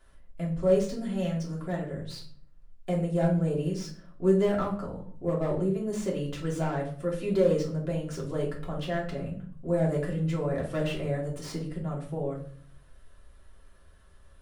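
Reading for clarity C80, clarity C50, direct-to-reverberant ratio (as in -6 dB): 13.0 dB, 8.0 dB, -4.5 dB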